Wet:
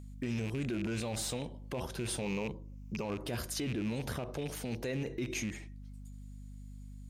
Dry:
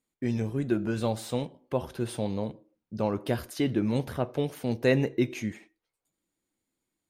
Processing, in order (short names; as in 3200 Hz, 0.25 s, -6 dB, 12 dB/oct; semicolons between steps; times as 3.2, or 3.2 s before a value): rattling part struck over -31 dBFS, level -30 dBFS; 2.21–3.05 ripple EQ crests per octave 0.77, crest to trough 9 dB; hum 50 Hz, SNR 17 dB; limiter -28 dBFS, peak gain reduction 16 dB; bell 6800 Hz +6.5 dB 1.4 oct; mismatched tape noise reduction encoder only